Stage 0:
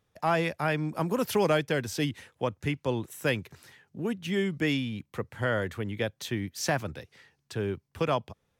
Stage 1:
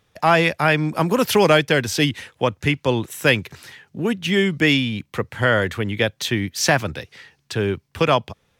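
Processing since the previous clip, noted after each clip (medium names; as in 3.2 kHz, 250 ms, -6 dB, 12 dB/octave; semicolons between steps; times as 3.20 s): peaking EQ 3 kHz +5 dB 2.2 oct; trim +9 dB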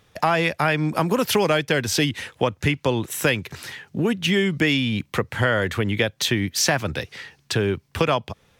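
compression 3:1, threshold -25 dBFS, peak gain reduction 11.5 dB; trim +5.5 dB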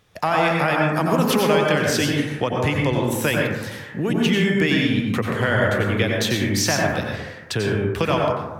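plate-style reverb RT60 1.1 s, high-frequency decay 0.3×, pre-delay 80 ms, DRR -1.5 dB; trim -2 dB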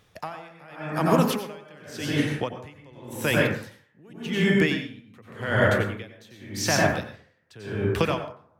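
logarithmic tremolo 0.88 Hz, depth 29 dB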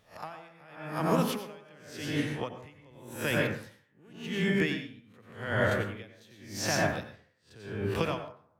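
reverse spectral sustain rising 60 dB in 0.31 s; trim -7.5 dB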